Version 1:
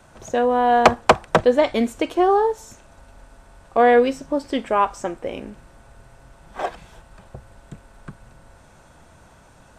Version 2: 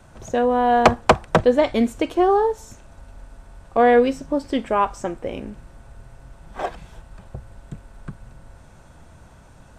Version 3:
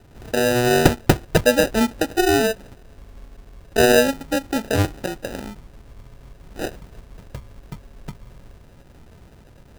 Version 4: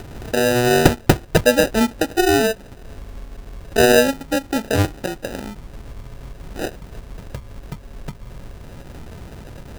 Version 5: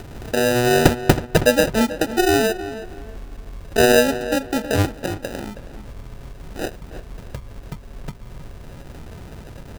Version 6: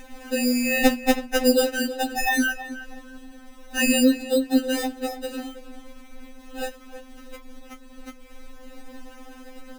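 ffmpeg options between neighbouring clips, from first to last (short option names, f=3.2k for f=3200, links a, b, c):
-af "lowshelf=f=210:g=8,volume=-1.5dB"
-af "acrusher=samples=40:mix=1:aa=0.000001"
-af "acompressor=mode=upward:threshold=-27dB:ratio=2.5,volume=1.5dB"
-filter_complex "[0:a]asplit=2[a][b];[b]adelay=321,lowpass=f=2.7k:p=1,volume=-12.5dB,asplit=2[c][d];[d]adelay=321,lowpass=f=2.7k:p=1,volume=0.29,asplit=2[e][f];[f]adelay=321,lowpass=f=2.7k:p=1,volume=0.29[g];[a][c][e][g]amix=inputs=4:normalize=0,volume=-1dB"
-af "afftfilt=real='re*3.46*eq(mod(b,12),0)':imag='im*3.46*eq(mod(b,12),0)':win_size=2048:overlap=0.75"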